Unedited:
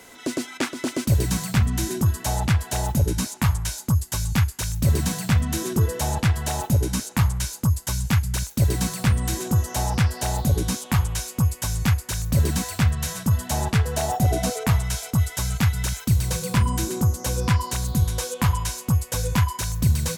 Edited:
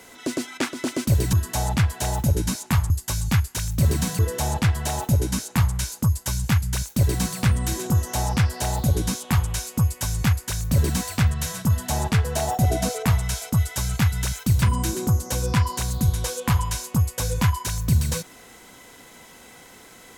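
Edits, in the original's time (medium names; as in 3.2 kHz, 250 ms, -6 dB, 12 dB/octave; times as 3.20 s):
1.33–2.04 s: delete
3.61–3.94 s: delete
5.23–5.80 s: delete
16.23–16.56 s: delete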